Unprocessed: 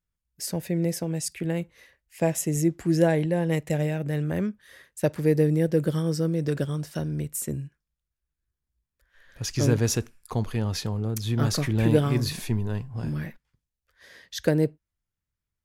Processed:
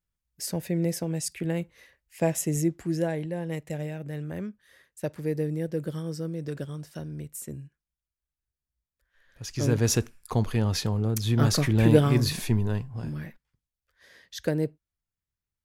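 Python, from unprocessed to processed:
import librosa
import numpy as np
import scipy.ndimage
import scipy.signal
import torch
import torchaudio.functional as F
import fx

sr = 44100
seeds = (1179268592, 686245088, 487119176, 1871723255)

y = fx.gain(x, sr, db=fx.line((2.54, -1.0), (3.08, -7.5), (9.42, -7.5), (9.95, 2.0), (12.69, 2.0), (13.12, -4.5)))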